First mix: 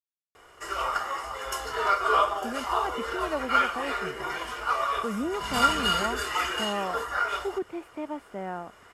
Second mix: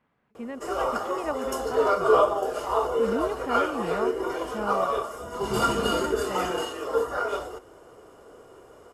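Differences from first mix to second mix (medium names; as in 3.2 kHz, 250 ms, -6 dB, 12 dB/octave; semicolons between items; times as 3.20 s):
speech: entry -2.05 s; background: add ten-band graphic EQ 125 Hz +5 dB, 250 Hz +9 dB, 500 Hz +10 dB, 2 kHz -9 dB, 4 kHz -3 dB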